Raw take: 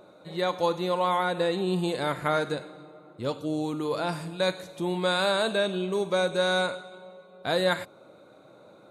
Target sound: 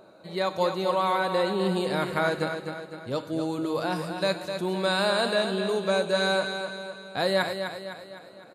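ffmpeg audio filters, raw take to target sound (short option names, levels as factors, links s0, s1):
-filter_complex "[0:a]asplit=2[s0][s1];[s1]aecho=0:1:265|530|795|1060|1325|1590:0.422|0.207|0.101|0.0496|0.0243|0.0119[s2];[s0][s2]amix=inputs=2:normalize=0,asetrate=45938,aresample=44100"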